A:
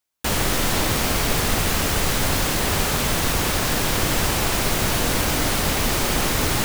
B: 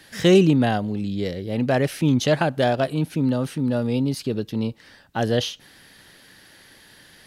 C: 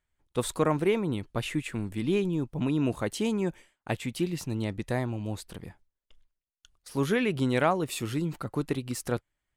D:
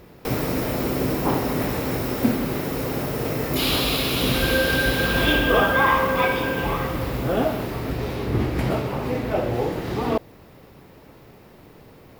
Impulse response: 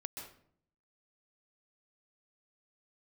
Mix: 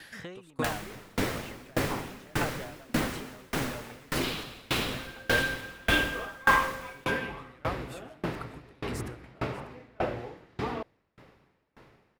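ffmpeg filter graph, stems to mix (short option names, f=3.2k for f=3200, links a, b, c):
-filter_complex "[0:a]acompressor=threshold=-29dB:ratio=5,adelay=400,volume=-4dB,asplit=2[a][b];[b]volume=-5.5dB[c];[1:a]acrossover=split=650|1600[d][e][f];[d]acompressor=threshold=-32dB:ratio=4[g];[e]acompressor=threshold=-34dB:ratio=4[h];[f]acompressor=threshold=-44dB:ratio=4[i];[g][h][i]amix=inputs=3:normalize=0,volume=-1dB[j];[2:a]acompressor=threshold=-34dB:ratio=10,volume=1.5dB,asplit=3[k][l][m];[l]volume=-6.5dB[n];[m]volume=-16.5dB[o];[3:a]lowpass=8.7k,adelay=650,volume=-5dB[p];[4:a]atrim=start_sample=2205[q];[c][n]amix=inputs=2:normalize=0[r];[r][q]afir=irnorm=-1:irlink=0[s];[o]aecho=0:1:592:1[t];[a][j][k][p][s][t]amix=inputs=6:normalize=0,equalizer=f=1.7k:t=o:w=1.8:g=6.5,aeval=exprs='val(0)*pow(10,-31*if(lt(mod(1.7*n/s,1),2*abs(1.7)/1000),1-mod(1.7*n/s,1)/(2*abs(1.7)/1000),(mod(1.7*n/s,1)-2*abs(1.7)/1000)/(1-2*abs(1.7)/1000))/20)':c=same"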